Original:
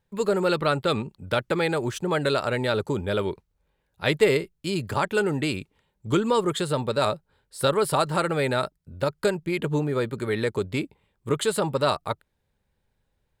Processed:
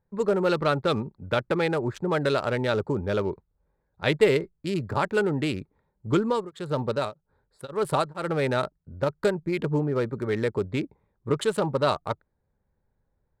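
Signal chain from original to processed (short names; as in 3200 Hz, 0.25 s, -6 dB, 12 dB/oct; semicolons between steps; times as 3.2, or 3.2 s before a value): Wiener smoothing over 15 samples; high shelf 6000 Hz -6 dB; 6.14–8.41 beating tremolo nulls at 1.3 Hz -> 2.5 Hz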